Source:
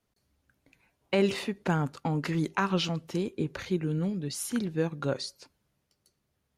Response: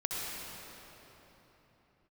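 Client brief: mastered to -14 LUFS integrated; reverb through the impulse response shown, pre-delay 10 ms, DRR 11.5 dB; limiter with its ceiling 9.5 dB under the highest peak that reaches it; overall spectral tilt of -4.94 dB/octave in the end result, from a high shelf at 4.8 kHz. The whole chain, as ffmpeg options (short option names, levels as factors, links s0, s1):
-filter_complex "[0:a]highshelf=f=4800:g=5.5,alimiter=limit=0.0708:level=0:latency=1,asplit=2[s0][s1];[1:a]atrim=start_sample=2205,adelay=10[s2];[s1][s2]afir=irnorm=-1:irlink=0,volume=0.141[s3];[s0][s3]amix=inputs=2:normalize=0,volume=8.91"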